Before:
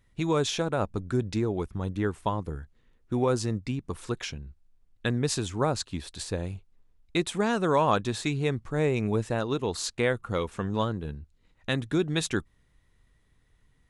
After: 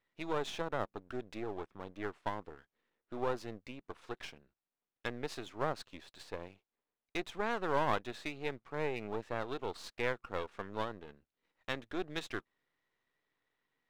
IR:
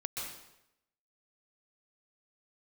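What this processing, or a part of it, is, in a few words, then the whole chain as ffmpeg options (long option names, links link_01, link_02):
crystal radio: -af "highpass=390,lowpass=3300,aeval=exprs='if(lt(val(0),0),0.251*val(0),val(0))':channel_layout=same,volume=-4.5dB"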